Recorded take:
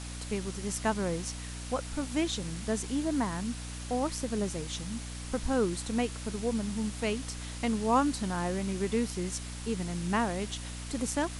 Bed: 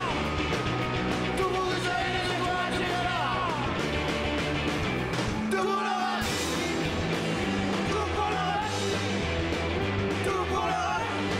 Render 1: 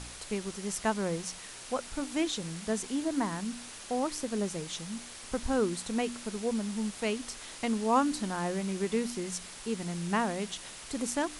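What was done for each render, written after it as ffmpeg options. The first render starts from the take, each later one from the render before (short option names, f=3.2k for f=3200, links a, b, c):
-af "bandreject=f=60:t=h:w=4,bandreject=f=120:t=h:w=4,bandreject=f=180:t=h:w=4,bandreject=f=240:t=h:w=4,bandreject=f=300:t=h:w=4"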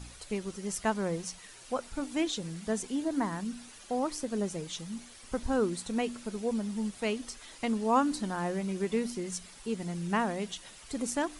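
-af "afftdn=nr=9:nf=-46"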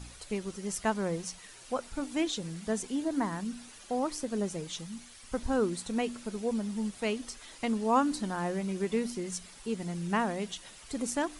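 -filter_complex "[0:a]asettb=1/sr,asplit=3[a][b][c];[a]atrim=end=4.864[d];[b]atrim=start=4.86:end=5.34,asetpts=PTS-STARTPTS,afade=t=in:d=0.004:c=qsin,afade=t=out:st=0.476:d=0.004:c=qsin,equalizer=f=420:t=o:w=2:g=-5.5[e];[c]atrim=start=5.336[f];[d][e]acrossfade=d=0.004:c1=hsin:c2=qsin[g];[g][f]acrossfade=d=0.004:c1=qsin:c2=hsin"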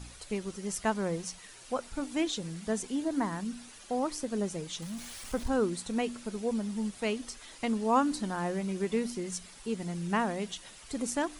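-filter_complex "[0:a]asettb=1/sr,asplit=3[a][b][c];[a]atrim=end=4.824[d];[b]atrim=start=4.82:end=5.48,asetpts=PTS-STARTPTS,afade=t=in:d=0.004:c=qsin,afade=t=out:st=0.656:d=0.004:c=qsin,aeval=exprs='val(0)+0.5*0.00794*sgn(val(0))':c=same[e];[c]atrim=start=5.476[f];[d][e]acrossfade=d=0.004:c1=hsin:c2=qsin[g];[g][f]acrossfade=d=0.004:c1=qsin:c2=hsin"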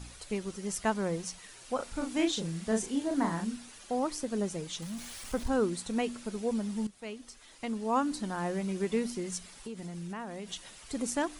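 -filter_complex "[0:a]asettb=1/sr,asplit=3[a][b][c];[a]atrim=end=1.764[d];[b]atrim=start=1.76:end=3.57,asetpts=PTS-STARTPTS,afade=t=in:d=0.004:c=qsin,afade=t=out:st=1.806:d=0.004:c=qsin,asplit=2[e][f];[f]adelay=36,volume=-4dB[g];[e][g]amix=inputs=2:normalize=0,atrim=end_sample=79821[h];[c]atrim=start=3.566[i];[d][h]acrossfade=d=0.004:c1=hsin:c2=qsin[j];[j][i]acrossfade=d=0.004:c1=qsin:c2=hsin,asettb=1/sr,asplit=3[k][l][m];[k]atrim=end=9.534[n];[l]atrim=start=9.53:end=10.52,asetpts=PTS-STARTPTS,afade=t=in:d=0.004:c=qsin,afade=t=out:st=0.986:d=0.004:c=qsin,acompressor=threshold=-36dB:ratio=8:attack=3.2:release=140:knee=1:detection=peak[o];[m]atrim=start=10.516[p];[n][o]acrossfade=d=0.004:c1=hsin:c2=qsin[q];[q][p]acrossfade=d=0.004:c1=qsin:c2=hsin,asplit=2[r][s];[r]atrim=end=6.87,asetpts=PTS-STARTPTS,afade=t=out:st=6.866:d=0.004:c=hsin:silence=0.223872[t];[s]atrim=start=6.87,asetpts=PTS-STARTPTS,afade=t=in:d=1.75:silence=0.223872[u];[t][u]concat=n=2:v=0:a=1"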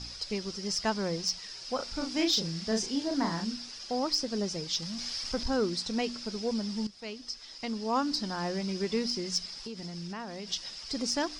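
-af "lowpass=f=5.1k:t=q:w=11,asoftclip=type=tanh:threshold=-16dB"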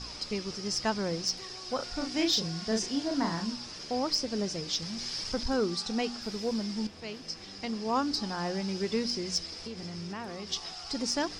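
-filter_complex "[1:a]volume=-22dB[a];[0:a][a]amix=inputs=2:normalize=0"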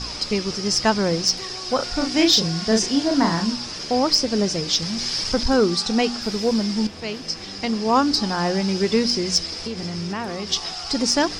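-af "volume=11dB"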